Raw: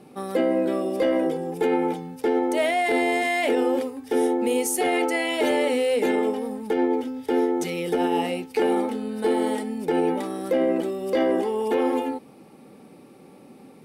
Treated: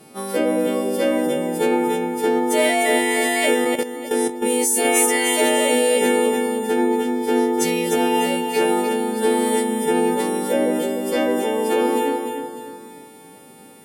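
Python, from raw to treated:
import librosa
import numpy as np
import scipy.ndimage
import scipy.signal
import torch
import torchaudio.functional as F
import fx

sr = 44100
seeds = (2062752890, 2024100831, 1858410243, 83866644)

p1 = fx.freq_snap(x, sr, grid_st=2)
p2 = p1 + fx.echo_feedback(p1, sr, ms=300, feedback_pct=40, wet_db=-6.5, dry=0)
p3 = fx.level_steps(p2, sr, step_db=11, at=(3.54, 4.85))
y = p3 * 10.0 ** (3.0 / 20.0)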